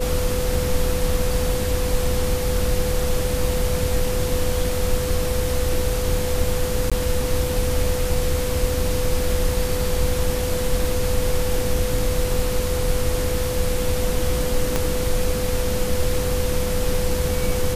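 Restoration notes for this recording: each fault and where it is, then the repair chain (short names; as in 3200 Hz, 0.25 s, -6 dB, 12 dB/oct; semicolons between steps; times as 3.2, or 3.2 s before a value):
tone 500 Hz -25 dBFS
6.9–6.92 gap 16 ms
14.76 pop -6 dBFS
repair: de-click; notch 500 Hz, Q 30; interpolate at 6.9, 16 ms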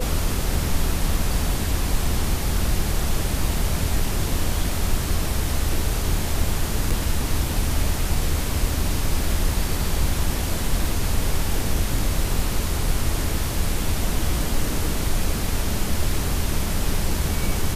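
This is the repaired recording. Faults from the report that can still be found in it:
14.76 pop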